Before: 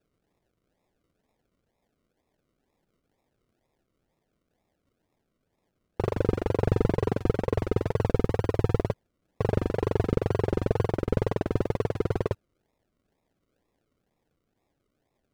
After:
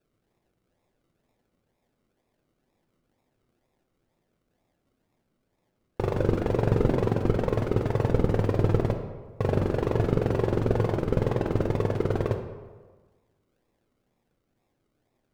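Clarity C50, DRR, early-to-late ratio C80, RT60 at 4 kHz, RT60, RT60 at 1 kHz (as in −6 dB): 7.5 dB, 4.5 dB, 9.0 dB, 0.85 s, 1.4 s, 1.4 s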